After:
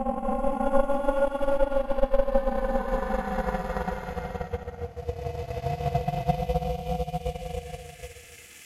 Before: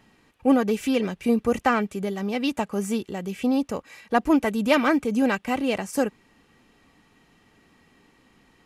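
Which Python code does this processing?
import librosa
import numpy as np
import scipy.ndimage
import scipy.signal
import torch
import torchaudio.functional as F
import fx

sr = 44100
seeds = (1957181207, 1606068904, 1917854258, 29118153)

y = fx.paulstretch(x, sr, seeds[0], factor=25.0, window_s=0.1, from_s=0.46)
y = y * np.sin(2.0 * np.pi * 280.0 * np.arange(len(y)) / sr)
y = fx.transient(y, sr, attack_db=9, sustain_db=-6)
y = y * librosa.db_to_amplitude(-6.0)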